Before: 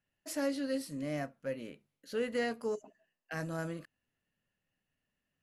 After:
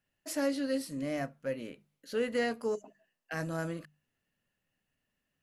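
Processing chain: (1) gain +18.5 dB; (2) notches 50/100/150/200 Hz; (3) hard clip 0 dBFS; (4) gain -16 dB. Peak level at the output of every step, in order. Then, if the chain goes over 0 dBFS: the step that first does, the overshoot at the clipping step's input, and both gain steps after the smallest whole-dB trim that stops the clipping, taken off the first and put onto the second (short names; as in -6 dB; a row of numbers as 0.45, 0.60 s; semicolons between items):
-4.0, -4.0, -4.0, -20.0 dBFS; no overload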